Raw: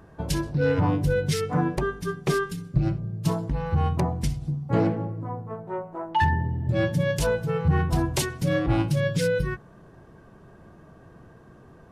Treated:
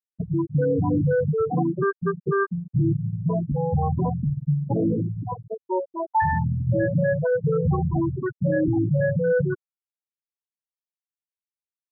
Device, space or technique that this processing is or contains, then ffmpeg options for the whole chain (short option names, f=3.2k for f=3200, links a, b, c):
PA system with an anti-feedback notch: -af "highpass=120,asuperstop=centerf=2300:order=12:qfactor=2.3,alimiter=limit=-21.5dB:level=0:latency=1:release=23,afftfilt=real='re*gte(hypot(re,im),0.126)':imag='im*gte(hypot(re,im),0.126)':win_size=1024:overlap=0.75,volume=8dB"